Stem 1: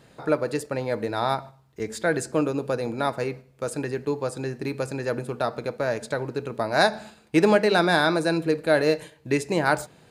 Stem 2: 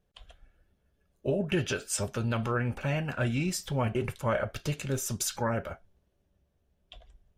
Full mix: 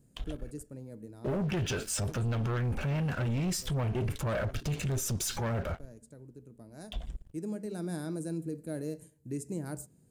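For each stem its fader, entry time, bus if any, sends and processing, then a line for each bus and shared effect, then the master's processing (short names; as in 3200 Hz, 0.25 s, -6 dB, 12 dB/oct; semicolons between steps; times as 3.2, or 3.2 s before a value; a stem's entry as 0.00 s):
-7.0 dB, 0.00 s, no send, EQ curve 250 Hz 0 dB, 840 Hz -20 dB, 3700 Hz -22 dB, 7900 Hz +1 dB; auto duck -9 dB, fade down 1.70 s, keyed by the second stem
-3.0 dB, 0.00 s, no send, low shelf 210 Hz +10 dB; sample leveller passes 3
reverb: off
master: limiter -27 dBFS, peak gain reduction 10.5 dB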